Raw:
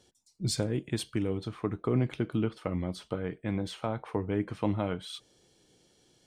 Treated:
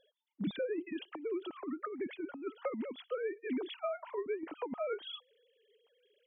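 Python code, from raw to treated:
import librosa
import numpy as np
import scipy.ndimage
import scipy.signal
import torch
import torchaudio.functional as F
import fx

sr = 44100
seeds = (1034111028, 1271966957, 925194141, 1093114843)

y = fx.sine_speech(x, sr)
y = fx.over_compress(y, sr, threshold_db=-31.0, ratio=-0.5)
y = y * 10.0 ** (-4.0 / 20.0)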